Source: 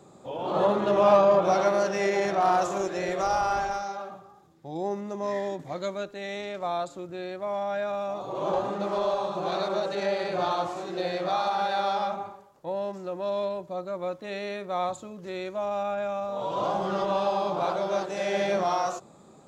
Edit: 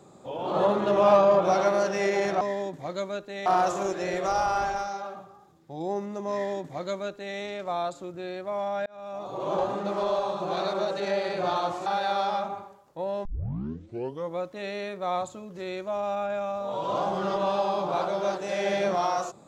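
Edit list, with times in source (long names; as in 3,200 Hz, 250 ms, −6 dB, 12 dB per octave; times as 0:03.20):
0:05.27–0:06.32: duplicate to 0:02.41
0:07.81–0:08.29: fade in
0:10.81–0:11.54: remove
0:12.93: tape start 1.13 s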